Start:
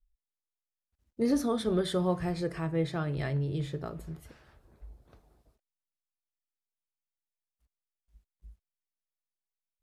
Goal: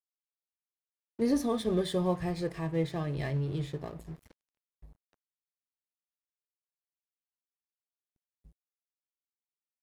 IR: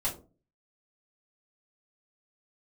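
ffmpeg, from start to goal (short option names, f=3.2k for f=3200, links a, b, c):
-af "asuperstop=centerf=1400:order=20:qfactor=4.4,aeval=exprs='sgn(val(0))*max(abs(val(0))-0.00335,0)':c=same"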